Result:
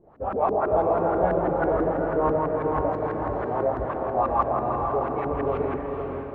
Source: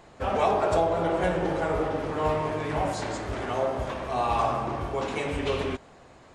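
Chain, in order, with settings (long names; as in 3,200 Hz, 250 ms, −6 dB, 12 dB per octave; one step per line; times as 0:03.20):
auto-filter low-pass saw up 6.1 Hz 300–1,600 Hz
automatic gain control gain up to 3.5 dB
feedback delay with all-pass diffusion 473 ms, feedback 46%, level −4 dB
level −5 dB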